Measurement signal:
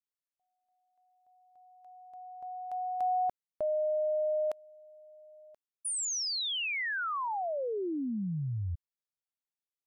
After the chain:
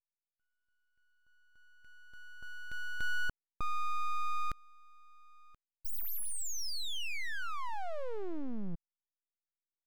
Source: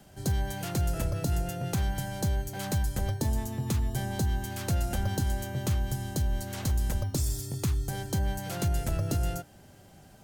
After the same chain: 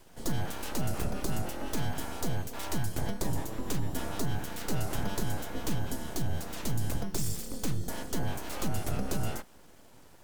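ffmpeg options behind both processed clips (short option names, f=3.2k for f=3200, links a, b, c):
-af "aeval=exprs='abs(val(0))':c=same"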